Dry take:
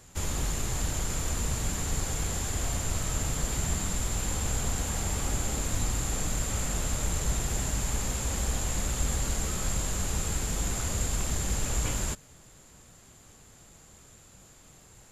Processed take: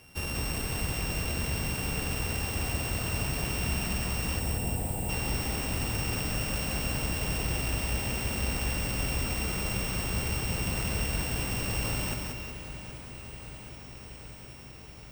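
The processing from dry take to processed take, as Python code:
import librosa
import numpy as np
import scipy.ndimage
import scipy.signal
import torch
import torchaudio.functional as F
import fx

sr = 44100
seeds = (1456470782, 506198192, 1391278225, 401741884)

p1 = np.r_[np.sort(x[:len(x) // 16 * 16].reshape(-1, 16), axis=1).ravel(), x[len(x) // 16 * 16:]]
p2 = fx.highpass(p1, sr, hz=74.0, slope=6)
p3 = fx.spec_erase(p2, sr, start_s=4.39, length_s=0.7, low_hz=990.0, high_hz=7100.0)
p4 = p3 + fx.echo_feedback(p3, sr, ms=183, feedback_pct=52, wet_db=-4.0, dry=0)
y = fx.echo_crushed(p4, sr, ms=776, feedback_pct=80, bits=9, wet_db=-14)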